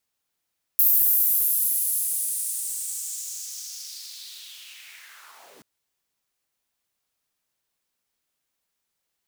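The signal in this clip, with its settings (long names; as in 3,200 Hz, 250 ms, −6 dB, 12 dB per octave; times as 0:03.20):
filter sweep on noise pink, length 4.83 s highpass, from 14,000 Hz, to 200 Hz, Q 3, linear, gain ramp −39 dB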